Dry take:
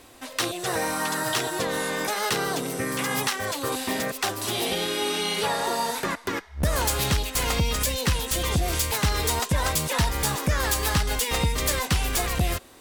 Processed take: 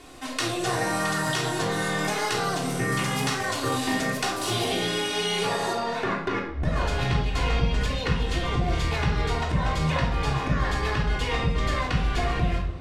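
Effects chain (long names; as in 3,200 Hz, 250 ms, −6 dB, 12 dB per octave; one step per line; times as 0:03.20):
low-pass filter 9,200 Hz 12 dB per octave, from 0:05.73 3,200 Hz
downward compressor 4 to 1, threshold −28 dBFS, peak gain reduction 8.5 dB
convolution reverb RT60 0.65 s, pre-delay 3 ms, DRR −2.5 dB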